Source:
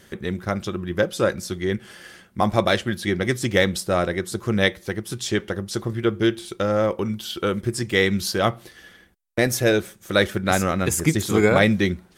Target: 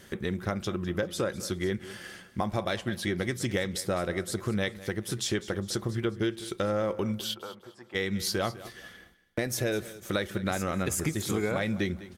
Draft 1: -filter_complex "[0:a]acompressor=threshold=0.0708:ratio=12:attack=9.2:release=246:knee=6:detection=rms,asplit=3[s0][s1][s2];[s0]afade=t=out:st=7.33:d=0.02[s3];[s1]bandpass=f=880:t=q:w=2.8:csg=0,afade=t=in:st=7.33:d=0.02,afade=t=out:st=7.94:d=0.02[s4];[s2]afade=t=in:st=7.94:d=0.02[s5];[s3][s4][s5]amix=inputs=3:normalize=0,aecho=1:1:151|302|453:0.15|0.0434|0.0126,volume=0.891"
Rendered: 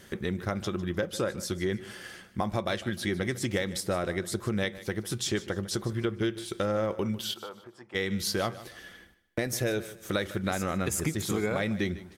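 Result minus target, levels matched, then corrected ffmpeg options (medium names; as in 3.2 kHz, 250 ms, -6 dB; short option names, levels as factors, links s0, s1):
echo 52 ms early
-filter_complex "[0:a]acompressor=threshold=0.0708:ratio=12:attack=9.2:release=246:knee=6:detection=rms,asplit=3[s0][s1][s2];[s0]afade=t=out:st=7.33:d=0.02[s3];[s1]bandpass=f=880:t=q:w=2.8:csg=0,afade=t=in:st=7.33:d=0.02,afade=t=out:st=7.94:d=0.02[s4];[s2]afade=t=in:st=7.94:d=0.02[s5];[s3][s4][s5]amix=inputs=3:normalize=0,aecho=1:1:203|406|609:0.15|0.0434|0.0126,volume=0.891"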